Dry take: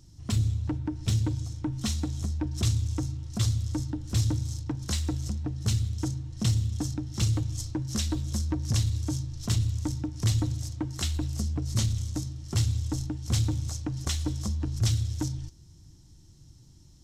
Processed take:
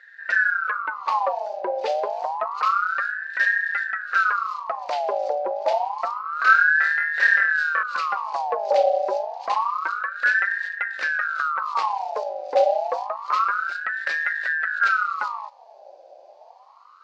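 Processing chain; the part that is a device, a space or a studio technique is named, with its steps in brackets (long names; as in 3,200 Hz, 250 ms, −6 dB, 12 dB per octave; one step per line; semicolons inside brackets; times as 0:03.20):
0:06.22–0:07.83: flutter between parallel walls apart 4.4 metres, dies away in 0.47 s
voice changer toy (ring modulator whose carrier an LFO sweeps 1,200 Hz, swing 45%, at 0.28 Hz; loudspeaker in its box 460–3,800 Hz, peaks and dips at 540 Hz +7 dB, 930 Hz −5 dB, 3,300 Hz −7 dB)
level +8 dB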